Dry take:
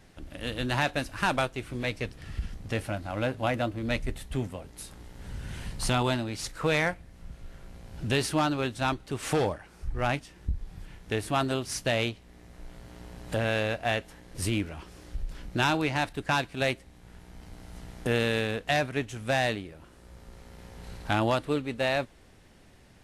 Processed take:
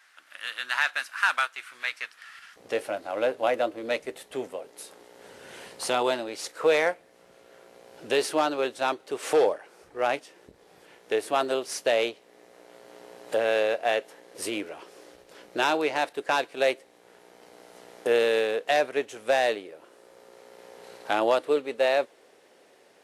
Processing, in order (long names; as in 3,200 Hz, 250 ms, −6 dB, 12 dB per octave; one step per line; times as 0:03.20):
high-pass with resonance 1,400 Hz, resonance Q 2.4, from 0:02.56 460 Hz